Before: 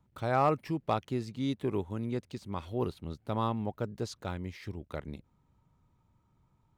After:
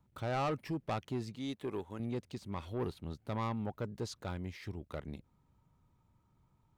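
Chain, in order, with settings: 1.35–2 low shelf 260 Hz -10.5 dB; soft clip -28 dBFS, distortion -10 dB; gain -1.5 dB

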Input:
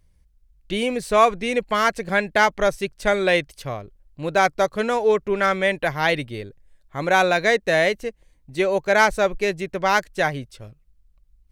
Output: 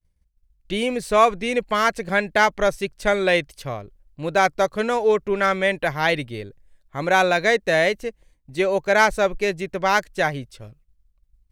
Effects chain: expander -50 dBFS

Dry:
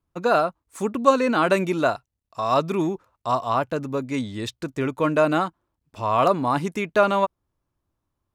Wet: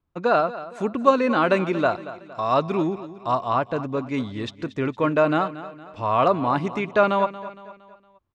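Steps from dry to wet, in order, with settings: LPF 4000 Hz 12 dB/oct; on a send: feedback echo 0.231 s, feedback 45%, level -15 dB

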